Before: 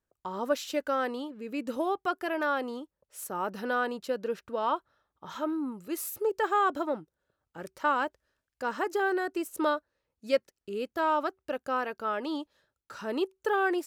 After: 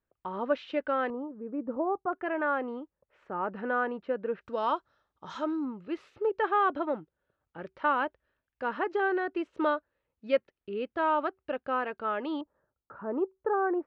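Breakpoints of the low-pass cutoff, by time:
low-pass 24 dB/octave
3 kHz
from 1.10 s 1.2 kHz
from 2.13 s 2.3 kHz
from 4.41 s 6.2 kHz
from 5.65 s 3.2 kHz
from 12.41 s 1.3 kHz

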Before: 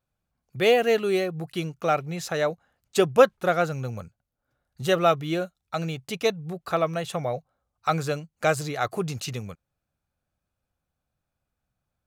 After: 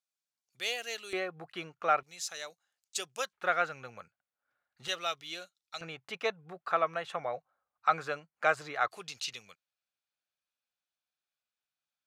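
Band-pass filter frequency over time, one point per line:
band-pass filter, Q 1.1
6 kHz
from 1.13 s 1.4 kHz
from 2.03 s 6.5 kHz
from 3.33 s 1.8 kHz
from 4.88 s 4.8 kHz
from 5.81 s 1.4 kHz
from 8.88 s 3.7 kHz

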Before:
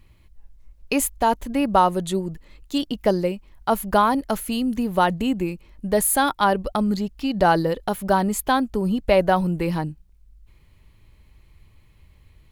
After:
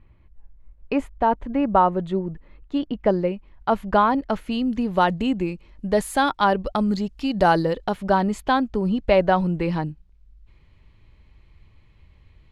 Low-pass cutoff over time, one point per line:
2.75 s 1.8 kHz
3.71 s 3.1 kHz
4.34 s 3.1 kHz
5.03 s 5.4 kHz
6.66 s 5.4 kHz
7.41 s 10 kHz
7.99 s 4.3 kHz

